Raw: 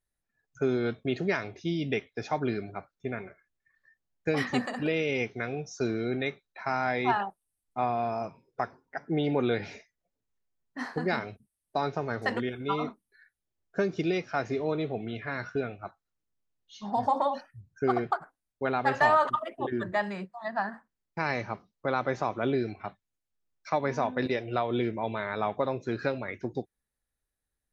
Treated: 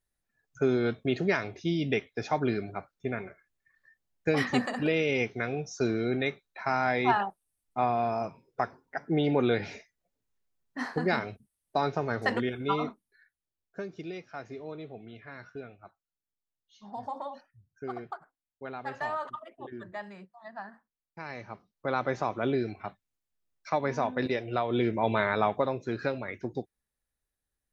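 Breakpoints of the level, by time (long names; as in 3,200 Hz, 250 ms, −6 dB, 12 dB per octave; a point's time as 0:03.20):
0:12.71 +1.5 dB
0:13.90 −11 dB
0:21.29 −11 dB
0:21.96 −0.5 dB
0:24.65 −0.5 dB
0:25.20 +7 dB
0:25.77 −1 dB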